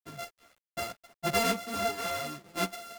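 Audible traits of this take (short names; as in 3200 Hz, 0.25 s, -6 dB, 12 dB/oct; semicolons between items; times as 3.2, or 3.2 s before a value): a buzz of ramps at a fixed pitch in blocks of 64 samples; chopped level 0.82 Hz, depth 60%, duty 25%; a quantiser's noise floor 10-bit, dither none; a shimmering, thickened sound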